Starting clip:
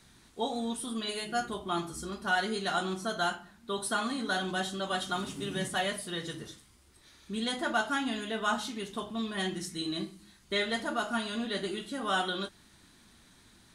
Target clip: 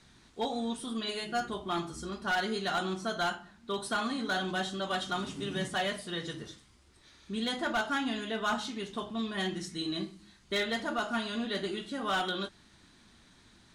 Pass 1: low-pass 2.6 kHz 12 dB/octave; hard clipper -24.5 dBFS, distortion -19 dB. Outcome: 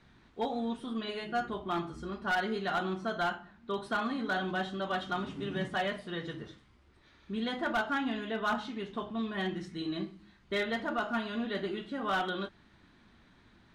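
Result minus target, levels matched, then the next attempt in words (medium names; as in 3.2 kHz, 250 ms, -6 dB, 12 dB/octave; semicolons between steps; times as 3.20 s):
8 kHz band -12.0 dB
low-pass 7.1 kHz 12 dB/octave; hard clipper -24.5 dBFS, distortion -18 dB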